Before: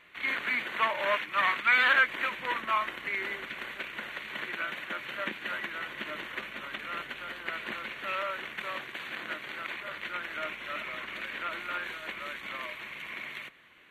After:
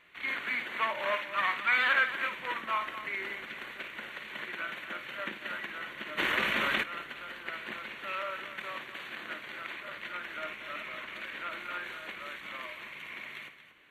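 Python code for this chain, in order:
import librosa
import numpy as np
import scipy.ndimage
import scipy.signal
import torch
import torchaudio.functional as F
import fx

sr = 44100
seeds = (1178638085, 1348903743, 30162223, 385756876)

p1 = x + fx.echo_multitap(x, sr, ms=(54, 232), db=(-11.0, -12.0), dry=0)
p2 = fx.env_flatten(p1, sr, amount_pct=70, at=(6.17, 6.82), fade=0.02)
y = p2 * 10.0 ** (-3.5 / 20.0)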